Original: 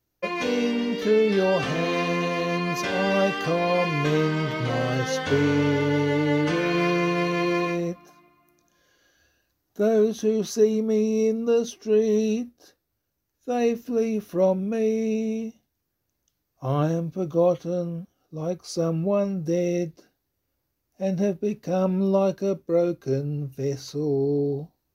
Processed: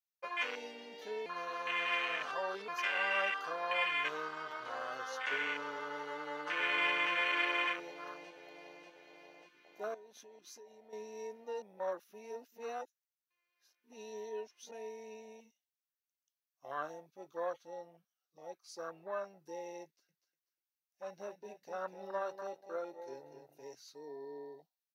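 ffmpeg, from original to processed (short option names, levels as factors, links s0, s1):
-filter_complex "[0:a]asplit=2[s0][s1];[s1]afade=t=in:st=6:d=0.01,afade=t=out:st=7.12:d=0.01,aecho=0:1:590|1180|1770|2360|2950|3540|4130|4720|5310|5900:0.668344|0.434424|0.282375|0.183544|0.119304|0.0775473|0.0504058|0.0327637|0.0212964|0.0138427[s2];[s0][s2]amix=inputs=2:normalize=0,asettb=1/sr,asplit=3[s3][s4][s5];[s3]atrim=end=9.944[s6];[s4]atrim=start=9.94:end=10.93,asetpts=PTS-STARTPTS,afade=t=in:d=0.004:c=qsin,afade=t=out:st=0.986:d=0.004:c=qsin,acompressor=threshold=0.0282:ratio=6:attack=3.2:release=140:knee=1:detection=peak[s7];[s5]atrim=start=10.926[s8];[s6][s7]acrossfade=d=0.004:c1=hsin:c2=qsin[s9];[s9][s8]acrossfade=d=0.004:c1=qsin:c2=hsin,asettb=1/sr,asplit=3[s10][s11][s12];[s10]atrim=end=19.844[s13];[s11]atrim=start=19.84:end=23.64,asetpts=PTS-STARTPTS,afade=t=in:d=0.004:c=qsin,afade=t=out:st=3.796:d=0.004:c=qsin,aecho=1:1:245|490|735|980:0.355|0.11|0.0341|0.0106,atrim=end_sample=167580[s14];[s12]atrim=start=23.636[s15];[s13][s14]acrossfade=d=0.004:c1=hsin:c2=qsin[s16];[s16][s15]acrossfade=d=0.004:c1=qsin:c2=hsin,asplit=5[s17][s18][s19][s20][s21];[s17]atrim=end=1.262[s22];[s18]atrim=start=1.258:end=2.682,asetpts=PTS-STARTPTS,areverse[s23];[s19]atrim=start=2.678:end=11.622[s24];[s20]atrim=start=11.618:end=14.712,asetpts=PTS-STARTPTS,areverse[s25];[s21]atrim=start=14.708[s26];[s22][s23]acrossfade=d=0.004:c1=hsin:c2=hsin[s27];[s27][s24]acrossfade=d=0.004:c1=hsin:c2=hsin[s28];[s28][s25]acrossfade=d=0.004:c1=hsin:c2=hsin[s29];[s29][s26]acrossfade=d=0.004:c1=hsin:c2=hsin,afwtdn=0.0398,highpass=1500"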